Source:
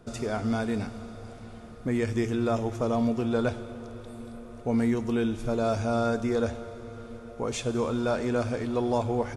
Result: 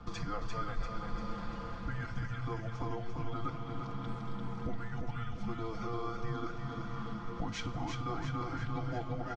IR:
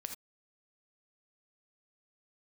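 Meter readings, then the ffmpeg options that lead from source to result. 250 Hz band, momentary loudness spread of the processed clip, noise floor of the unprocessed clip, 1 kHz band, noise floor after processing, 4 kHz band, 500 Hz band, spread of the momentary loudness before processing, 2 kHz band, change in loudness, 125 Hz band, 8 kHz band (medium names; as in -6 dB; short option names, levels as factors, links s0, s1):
-13.5 dB, 4 LU, -45 dBFS, -6.0 dB, -42 dBFS, -6.5 dB, -15.5 dB, 16 LU, -7.0 dB, -11.5 dB, -5.0 dB, -12.5 dB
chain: -af "lowpass=f=5700:w=0.5412,lowpass=f=5700:w=1.3066,aecho=1:1:5.5:0.99,acompressor=threshold=0.0141:ratio=6,equalizer=f=200:t=o:w=0.33:g=8,equalizer=f=630:t=o:w=0.33:g=-4,equalizer=f=1000:t=o:w=0.33:g=6,equalizer=f=1600:t=o:w=0.33:g=12,afreqshift=-230,aecho=1:1:345|690|1035|1380|1725|2070:0.596|0.298|0.149|0.0745|0.0372|0.0186"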